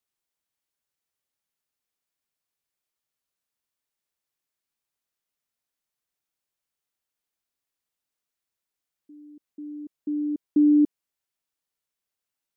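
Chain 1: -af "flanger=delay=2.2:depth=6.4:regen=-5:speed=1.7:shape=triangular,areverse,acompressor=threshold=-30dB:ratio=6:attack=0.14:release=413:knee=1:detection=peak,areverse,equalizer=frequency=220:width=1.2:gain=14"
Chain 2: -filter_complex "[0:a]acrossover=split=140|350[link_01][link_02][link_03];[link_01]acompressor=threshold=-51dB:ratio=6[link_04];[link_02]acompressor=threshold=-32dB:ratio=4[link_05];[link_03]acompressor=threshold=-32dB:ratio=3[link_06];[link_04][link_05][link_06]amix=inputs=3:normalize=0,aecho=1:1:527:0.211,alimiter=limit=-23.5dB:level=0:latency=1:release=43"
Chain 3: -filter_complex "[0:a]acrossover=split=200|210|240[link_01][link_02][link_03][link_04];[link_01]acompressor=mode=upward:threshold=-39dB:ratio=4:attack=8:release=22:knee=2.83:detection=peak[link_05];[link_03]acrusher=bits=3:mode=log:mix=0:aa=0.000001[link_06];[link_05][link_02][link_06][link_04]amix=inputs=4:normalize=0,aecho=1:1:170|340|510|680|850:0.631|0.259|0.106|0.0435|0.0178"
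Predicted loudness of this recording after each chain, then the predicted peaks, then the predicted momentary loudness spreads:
−28.5, −33.0, −24.5 LKFS; −17.0, −23.5, −13.0 dBFS; 18, 19, 24 LU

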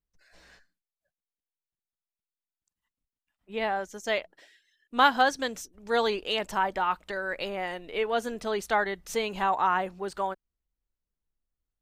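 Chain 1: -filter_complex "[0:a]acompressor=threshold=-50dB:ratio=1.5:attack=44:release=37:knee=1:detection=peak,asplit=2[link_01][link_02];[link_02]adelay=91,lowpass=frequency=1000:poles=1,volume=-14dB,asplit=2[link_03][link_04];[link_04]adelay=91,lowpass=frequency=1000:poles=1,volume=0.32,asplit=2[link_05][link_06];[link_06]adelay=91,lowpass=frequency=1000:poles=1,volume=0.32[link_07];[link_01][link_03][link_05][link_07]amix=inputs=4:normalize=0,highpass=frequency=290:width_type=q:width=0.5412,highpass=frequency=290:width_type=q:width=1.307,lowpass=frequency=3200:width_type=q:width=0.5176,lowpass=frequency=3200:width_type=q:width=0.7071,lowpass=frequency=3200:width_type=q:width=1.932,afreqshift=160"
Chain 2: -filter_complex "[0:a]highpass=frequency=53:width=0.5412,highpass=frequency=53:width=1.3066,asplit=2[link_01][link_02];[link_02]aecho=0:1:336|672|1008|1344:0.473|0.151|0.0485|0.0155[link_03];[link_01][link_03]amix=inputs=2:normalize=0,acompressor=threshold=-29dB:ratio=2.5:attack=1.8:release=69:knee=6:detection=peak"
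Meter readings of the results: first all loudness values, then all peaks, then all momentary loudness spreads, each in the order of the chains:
−36.0, −33.0 LKFS; −18.0, −17.0 dBFS; 8, 9 LU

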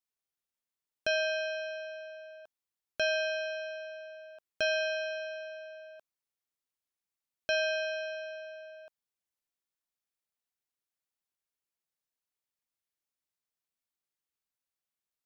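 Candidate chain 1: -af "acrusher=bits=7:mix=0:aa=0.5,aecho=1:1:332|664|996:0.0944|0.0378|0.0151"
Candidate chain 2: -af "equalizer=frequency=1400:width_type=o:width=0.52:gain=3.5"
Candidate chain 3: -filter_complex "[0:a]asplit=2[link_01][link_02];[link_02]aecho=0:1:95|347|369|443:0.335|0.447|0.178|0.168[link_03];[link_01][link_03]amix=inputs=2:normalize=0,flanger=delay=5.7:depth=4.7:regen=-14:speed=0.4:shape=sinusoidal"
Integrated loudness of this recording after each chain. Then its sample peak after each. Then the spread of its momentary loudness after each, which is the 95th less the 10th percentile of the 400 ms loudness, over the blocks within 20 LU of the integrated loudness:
−33.5, −32.5, −36.5 LKFS; −19.5, −18.5, −21.5 dBFS; 19, 19, 20 LU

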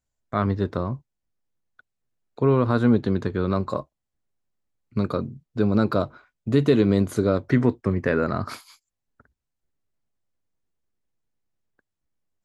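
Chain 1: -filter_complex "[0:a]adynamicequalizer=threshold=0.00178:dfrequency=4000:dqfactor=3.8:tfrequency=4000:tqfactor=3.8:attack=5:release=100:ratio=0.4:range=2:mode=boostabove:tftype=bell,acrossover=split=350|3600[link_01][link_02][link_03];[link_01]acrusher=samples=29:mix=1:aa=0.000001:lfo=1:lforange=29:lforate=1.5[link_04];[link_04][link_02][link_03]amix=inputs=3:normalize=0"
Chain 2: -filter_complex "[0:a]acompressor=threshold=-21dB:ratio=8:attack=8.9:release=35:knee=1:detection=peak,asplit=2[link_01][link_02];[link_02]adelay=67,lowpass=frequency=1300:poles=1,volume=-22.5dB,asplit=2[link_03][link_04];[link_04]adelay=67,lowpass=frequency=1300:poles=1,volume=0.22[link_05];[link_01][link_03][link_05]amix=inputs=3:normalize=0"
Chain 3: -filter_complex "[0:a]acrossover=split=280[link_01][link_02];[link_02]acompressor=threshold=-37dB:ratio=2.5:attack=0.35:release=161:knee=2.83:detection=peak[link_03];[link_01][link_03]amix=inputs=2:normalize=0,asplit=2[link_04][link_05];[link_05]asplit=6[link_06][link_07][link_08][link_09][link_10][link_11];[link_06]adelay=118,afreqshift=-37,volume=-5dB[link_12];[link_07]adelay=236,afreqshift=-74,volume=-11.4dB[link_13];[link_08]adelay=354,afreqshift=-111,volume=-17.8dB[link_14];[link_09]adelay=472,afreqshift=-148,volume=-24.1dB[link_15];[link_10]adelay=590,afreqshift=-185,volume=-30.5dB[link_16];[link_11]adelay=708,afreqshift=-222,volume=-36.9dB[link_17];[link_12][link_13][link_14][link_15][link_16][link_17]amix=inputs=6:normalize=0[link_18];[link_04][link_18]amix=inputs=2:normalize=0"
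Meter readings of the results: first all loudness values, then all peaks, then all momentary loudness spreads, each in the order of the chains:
−23.5, −26.0, −25.5 LKFS; −6.0, −9.0, −9.0 dBFS; 13, 10, 14 LU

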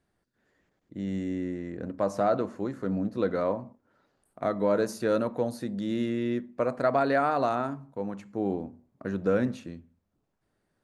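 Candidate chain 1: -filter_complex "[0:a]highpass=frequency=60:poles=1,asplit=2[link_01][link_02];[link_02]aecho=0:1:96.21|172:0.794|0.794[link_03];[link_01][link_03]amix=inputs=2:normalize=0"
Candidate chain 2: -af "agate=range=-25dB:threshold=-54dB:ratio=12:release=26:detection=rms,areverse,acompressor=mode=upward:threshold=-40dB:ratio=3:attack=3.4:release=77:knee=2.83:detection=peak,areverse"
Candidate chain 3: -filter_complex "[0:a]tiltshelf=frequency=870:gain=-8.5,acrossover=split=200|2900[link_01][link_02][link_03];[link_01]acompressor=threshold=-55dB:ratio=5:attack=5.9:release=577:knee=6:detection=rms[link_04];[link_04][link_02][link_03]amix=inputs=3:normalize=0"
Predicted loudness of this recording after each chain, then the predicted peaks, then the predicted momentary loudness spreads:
−26.0, −29.5, −31.5 LKFS; −8.5, −12.5, −12.0 dBFS; 12, 11, 16 LU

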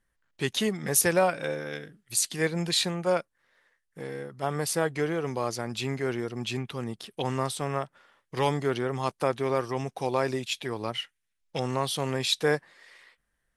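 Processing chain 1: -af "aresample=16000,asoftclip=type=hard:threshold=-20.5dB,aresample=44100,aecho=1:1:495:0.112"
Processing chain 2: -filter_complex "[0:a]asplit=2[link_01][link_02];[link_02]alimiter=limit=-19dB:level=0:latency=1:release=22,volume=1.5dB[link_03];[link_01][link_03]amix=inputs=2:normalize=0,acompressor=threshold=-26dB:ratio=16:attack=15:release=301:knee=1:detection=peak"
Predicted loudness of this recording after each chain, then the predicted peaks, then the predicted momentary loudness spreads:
−30.5, −31.0 LKFS; −16.5, −12.5 dBFS; 14, 7 LU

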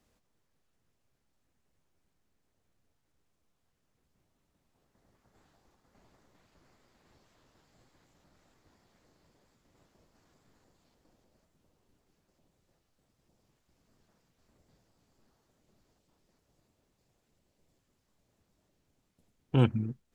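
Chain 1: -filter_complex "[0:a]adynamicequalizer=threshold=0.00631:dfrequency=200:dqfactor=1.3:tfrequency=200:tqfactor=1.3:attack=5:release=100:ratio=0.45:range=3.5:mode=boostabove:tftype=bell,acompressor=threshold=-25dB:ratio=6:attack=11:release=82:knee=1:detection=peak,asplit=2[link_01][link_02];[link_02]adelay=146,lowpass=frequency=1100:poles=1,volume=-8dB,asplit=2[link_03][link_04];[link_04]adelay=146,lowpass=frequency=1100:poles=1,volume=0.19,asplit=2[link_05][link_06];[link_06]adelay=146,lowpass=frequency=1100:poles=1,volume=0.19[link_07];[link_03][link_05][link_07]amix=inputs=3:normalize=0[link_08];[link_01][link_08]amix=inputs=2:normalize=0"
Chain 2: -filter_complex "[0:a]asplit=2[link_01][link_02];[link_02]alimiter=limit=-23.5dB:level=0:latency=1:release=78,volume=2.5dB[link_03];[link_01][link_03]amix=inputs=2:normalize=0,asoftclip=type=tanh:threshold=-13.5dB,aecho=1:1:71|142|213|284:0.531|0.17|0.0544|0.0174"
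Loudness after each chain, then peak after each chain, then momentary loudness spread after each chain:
−31.0, −26.0 LKFS; −16.5, −11.0 dBFS; 4, 5 LU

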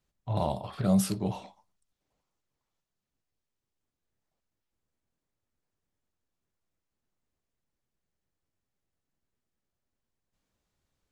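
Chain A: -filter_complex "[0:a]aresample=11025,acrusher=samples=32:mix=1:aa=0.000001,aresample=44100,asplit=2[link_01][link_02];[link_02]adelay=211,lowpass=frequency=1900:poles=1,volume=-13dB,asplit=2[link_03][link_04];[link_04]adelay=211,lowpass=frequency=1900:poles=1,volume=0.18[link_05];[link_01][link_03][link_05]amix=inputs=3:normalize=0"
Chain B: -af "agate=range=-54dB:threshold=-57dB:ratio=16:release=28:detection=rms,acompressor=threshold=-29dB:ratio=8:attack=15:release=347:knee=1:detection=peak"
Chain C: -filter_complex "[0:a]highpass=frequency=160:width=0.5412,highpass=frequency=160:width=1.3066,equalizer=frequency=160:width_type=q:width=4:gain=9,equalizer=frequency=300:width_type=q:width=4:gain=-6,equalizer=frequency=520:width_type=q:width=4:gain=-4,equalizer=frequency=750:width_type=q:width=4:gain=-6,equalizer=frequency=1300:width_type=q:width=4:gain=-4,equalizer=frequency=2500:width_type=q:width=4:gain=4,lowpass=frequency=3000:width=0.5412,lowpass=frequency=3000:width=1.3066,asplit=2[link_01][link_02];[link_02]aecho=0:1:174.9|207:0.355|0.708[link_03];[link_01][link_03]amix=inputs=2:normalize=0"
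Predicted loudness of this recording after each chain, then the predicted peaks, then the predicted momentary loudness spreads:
−30.0, −36.0, −27.5 LKFS; −13.0, −20.0, −15.0 dBFS; 13, 8, 15 LU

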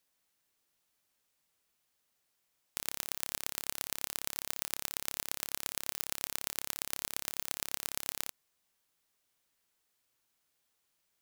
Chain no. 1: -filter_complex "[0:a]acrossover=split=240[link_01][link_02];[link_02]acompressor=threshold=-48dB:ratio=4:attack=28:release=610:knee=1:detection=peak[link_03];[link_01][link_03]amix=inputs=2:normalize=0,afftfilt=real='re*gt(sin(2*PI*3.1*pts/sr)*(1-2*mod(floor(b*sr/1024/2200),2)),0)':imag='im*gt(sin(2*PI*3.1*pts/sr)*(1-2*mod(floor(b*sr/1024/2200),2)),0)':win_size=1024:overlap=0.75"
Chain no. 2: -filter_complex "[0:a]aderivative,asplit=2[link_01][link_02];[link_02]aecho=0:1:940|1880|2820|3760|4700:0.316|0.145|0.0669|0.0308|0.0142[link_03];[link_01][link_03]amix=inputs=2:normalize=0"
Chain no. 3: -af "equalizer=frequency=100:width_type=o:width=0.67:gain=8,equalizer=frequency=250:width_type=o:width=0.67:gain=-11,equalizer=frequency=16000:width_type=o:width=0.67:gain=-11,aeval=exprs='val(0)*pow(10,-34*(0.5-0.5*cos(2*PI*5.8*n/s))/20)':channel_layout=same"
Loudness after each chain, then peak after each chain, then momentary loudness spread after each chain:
−45.5, −33.5, −47.0 LKFS; −11.0, −5.0, −10.5 dBFS; 2, 16, 2 LU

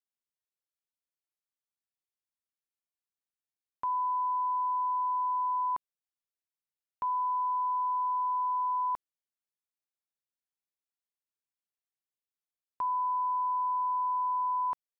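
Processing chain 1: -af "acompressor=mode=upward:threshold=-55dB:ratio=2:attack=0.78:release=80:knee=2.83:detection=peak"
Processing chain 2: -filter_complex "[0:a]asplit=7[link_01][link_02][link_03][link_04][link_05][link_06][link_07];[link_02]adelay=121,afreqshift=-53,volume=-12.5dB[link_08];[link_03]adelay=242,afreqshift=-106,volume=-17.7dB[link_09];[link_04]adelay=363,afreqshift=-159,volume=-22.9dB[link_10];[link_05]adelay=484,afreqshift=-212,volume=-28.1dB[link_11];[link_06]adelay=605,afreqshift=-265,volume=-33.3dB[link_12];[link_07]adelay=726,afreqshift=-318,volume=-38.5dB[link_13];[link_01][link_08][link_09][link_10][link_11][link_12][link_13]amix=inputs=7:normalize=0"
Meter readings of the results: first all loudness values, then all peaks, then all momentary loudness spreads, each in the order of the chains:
−30.5, −30.0 LKFS; −27.0, −25.0 dBFS; 4, 5 LU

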